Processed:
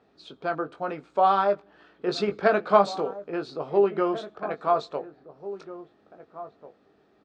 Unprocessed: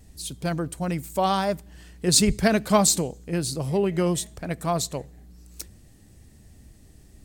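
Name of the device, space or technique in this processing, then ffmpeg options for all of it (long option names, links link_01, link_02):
phone earpiece: -filter_complex "[0:a]highpass=400,equalizer=frequency=420:width_type=q:width=4:gain=5,equalizer=frequency=720:width_type=q:width=4:gain=3,equalizer=frequency=1300:width_type=q:width=4:gain=9,equalizer=frequency=2000:width_type=q:width=4:gain=-9,equalizer=frequency=2900:width_type=q:width=4:gain=-7,lowpass=frequency=3200:width=0.5412,lowpass=frequency=3200:width=1.3066,asplit=2[link_01][link_02];[link_02]adelay=20,volume=-7dB[link_03];[link_01][link_03]amix=inputs=2:normalize=0,asplit=2[link_04][link_05];[link_05]adelay=1691,volume=-14dB,highshelf=frequency=4000:gain=-38[link_06];[link_04][link_06]amix=inputs=2:normalize=0"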